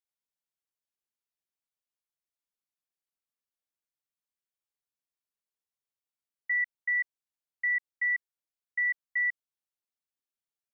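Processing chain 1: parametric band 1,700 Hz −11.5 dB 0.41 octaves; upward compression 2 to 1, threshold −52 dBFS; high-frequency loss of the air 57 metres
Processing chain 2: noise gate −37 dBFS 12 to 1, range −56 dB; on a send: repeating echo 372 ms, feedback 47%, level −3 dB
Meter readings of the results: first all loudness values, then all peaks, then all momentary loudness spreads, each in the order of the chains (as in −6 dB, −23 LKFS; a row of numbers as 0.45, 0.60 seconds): −35.5, −27.5 LKFS; −30.0, −19.5 dBFS; 6, 11 LU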